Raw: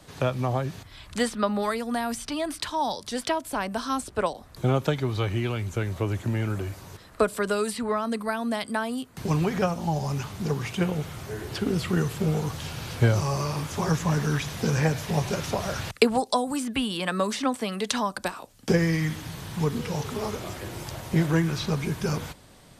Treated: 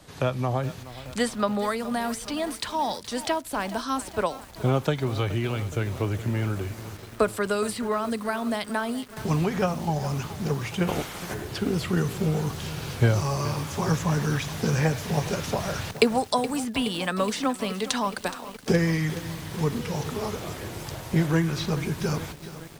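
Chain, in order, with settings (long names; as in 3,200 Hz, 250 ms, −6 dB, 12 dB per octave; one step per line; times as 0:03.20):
0:10.87–0:11.33: ceiling on every frequency bin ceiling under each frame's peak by 19 dB
feedback echo at a low word length 421 ms, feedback 80%, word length 6 bits, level −14 dB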